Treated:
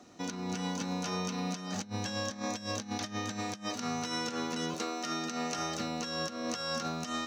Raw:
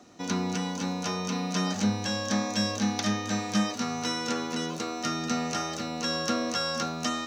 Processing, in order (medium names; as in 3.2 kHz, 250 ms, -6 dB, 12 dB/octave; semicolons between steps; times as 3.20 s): 4.74–5.56 s: high-pass 230 Hz 12 dB/octave; compressor with a negative ratio -31 dBFS, ratio -0.5; trim -4 dB